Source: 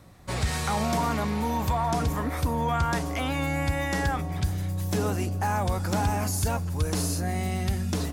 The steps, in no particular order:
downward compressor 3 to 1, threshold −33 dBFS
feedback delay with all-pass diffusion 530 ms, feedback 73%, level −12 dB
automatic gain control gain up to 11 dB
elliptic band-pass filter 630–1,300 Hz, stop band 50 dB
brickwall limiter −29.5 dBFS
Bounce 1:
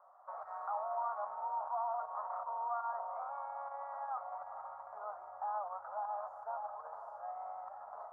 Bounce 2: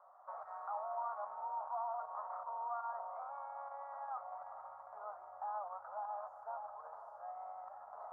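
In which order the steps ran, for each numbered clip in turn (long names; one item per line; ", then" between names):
feedback delay with all-pass diffusion, then brickwall limiter, then automatic gain control, then downward compressor, then elliptic band-pass filter
downward compressor, then automatic gain control, then feedback delay with all-pass diffusion, then brickwall limiter, then elliptic band-pass filter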